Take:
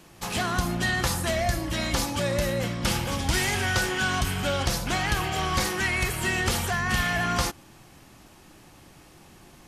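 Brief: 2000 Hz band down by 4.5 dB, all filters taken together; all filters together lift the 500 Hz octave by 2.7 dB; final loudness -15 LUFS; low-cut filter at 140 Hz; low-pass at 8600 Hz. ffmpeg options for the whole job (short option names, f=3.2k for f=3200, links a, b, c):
-af "highpass=140,lowpass=8.6k,equalizer=f=500:t=o:g=4,equalizer=f=2k:t=o:g=-6,volume=12.5dB"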